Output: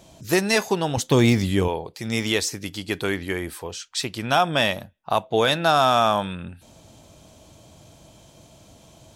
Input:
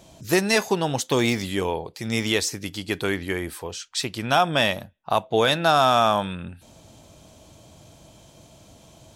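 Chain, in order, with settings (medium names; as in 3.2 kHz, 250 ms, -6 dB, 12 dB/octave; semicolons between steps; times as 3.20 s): 0.97–1.68 s: bass shelf 230 Hz +12 dB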